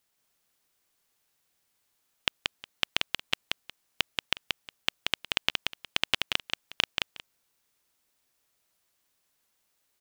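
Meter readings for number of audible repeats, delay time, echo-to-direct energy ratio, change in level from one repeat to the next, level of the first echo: 2, 0.181 s, -3.5 dB, -15.5 dB, -3.5 dB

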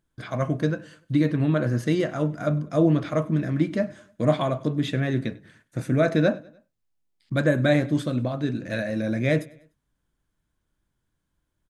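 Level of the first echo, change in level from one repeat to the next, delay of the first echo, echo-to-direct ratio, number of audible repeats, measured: -23.0 dB, -6.5 dB, 99 ms, -22.0 dB, 2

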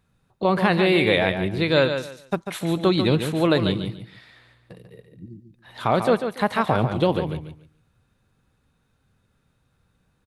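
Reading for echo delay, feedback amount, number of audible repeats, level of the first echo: 0.143 s, 23%, 3, -8.0 dB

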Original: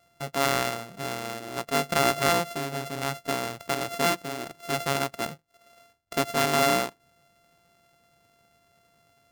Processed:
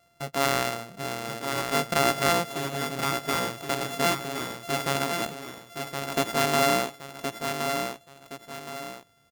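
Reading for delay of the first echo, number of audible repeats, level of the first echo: 1.069 s, 3, -6.0 dB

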